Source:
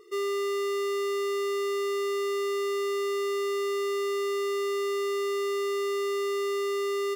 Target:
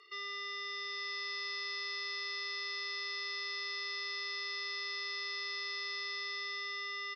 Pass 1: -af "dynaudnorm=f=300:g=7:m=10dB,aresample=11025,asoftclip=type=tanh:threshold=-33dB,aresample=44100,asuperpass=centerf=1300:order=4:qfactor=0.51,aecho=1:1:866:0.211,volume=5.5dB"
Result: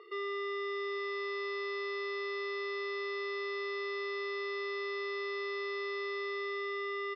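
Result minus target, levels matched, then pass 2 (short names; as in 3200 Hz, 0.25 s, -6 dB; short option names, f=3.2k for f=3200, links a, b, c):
4000 Hz band -8.5 dB
-af "dynaudnorm=f=300:g=7:m=10dB,aresample=11025,asoftclip=type=tanh:threshold=-33dB,aresample=44100,asuperpass=centerf=3700:order=4:qfactor=0.51,aecho=1:1:866:0.211,volume=5.5dB"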